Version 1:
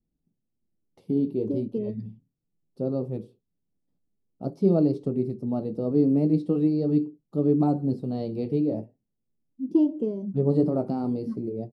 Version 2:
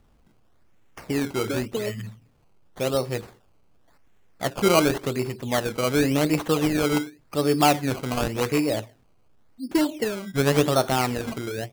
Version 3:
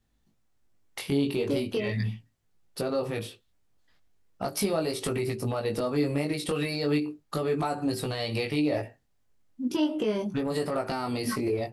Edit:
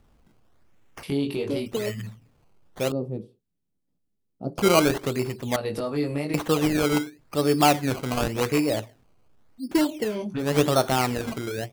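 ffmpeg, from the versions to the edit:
-filter_complex "[2:a]asplit=3[s0][s1][s2];[1:a]asplit=5[s3][s4][s5][s6][s7];[s3]atrim=end=1.032[s8];[s0]atrim=start=1.028:end=1.662[s9];[s4]atrim=start=1.658:end=2.922[s10];[0:a]atrim=start=2.918:end=4.582[s11];[s5]atrim=start=4.578:end=5.562[s12];[s1]atrim=start=5.558:end=6.342[s13];[s6]atrim=start=6.338:end=10.2[s14];[s2]atrim=start=9.96:end=10.61[s15];[s7]atrim=start=10.37[s16];[s8][s9]acrossfade=d=0.004:c1=hsin:c2=hsin[s17];[s17][s10]acrossfade=d=0.004:c1=hsin:c2=hsin[s18];[s18][s11]acrossfade=d=0.004:c1=hsin:c2=hsin[s19];[s19][s12]acrossfade=d=0.004:c1=hsin:c2=hsin[s20];[s20][s13]acrossfade=d=0.004:c1=hsin:c2=hsin[s21];[s21][s14]acrossfade=d=0.004:c1=hsin:c2=hsin[s22];[s22][s15]acrossfade=d=0.24:c1=tri:c2=tri[s23];[s23][s16]acrossfade=d=0.24:c1=tri:c2=tri"

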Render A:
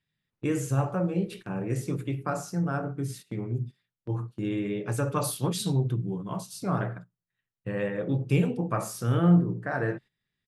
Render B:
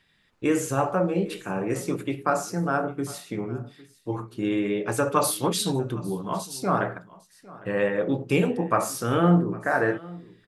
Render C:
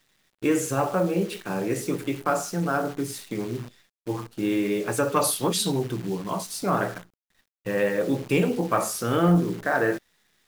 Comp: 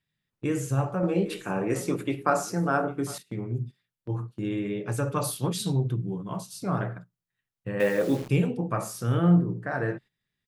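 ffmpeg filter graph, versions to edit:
-filter_complex "[0:a]asplit=3[s0][s1][s2];[s0]atrim=end=1.032[s3];[1:a]atrim=start=1.028:end=3.182[s4];[s1]atrim=start=3.178:end=7.802[s5];[2:a]atrim=start=7.798:end=8.292[s6];[s2]atrim=start=8.288[s7];[s3][s4]acrossfade=d=0.004:c1=hsin:c2=hsin[s8];[s8][s5]acrossfade=d=0.004:c1=hsin:c2=hsin[s9];[s9][s6]acrossfade=d=0.004:c1=hsin:c2=hsin[s10];[s10][s7]acrossfade=d=0.004:c1=hsin:c2=hsin"

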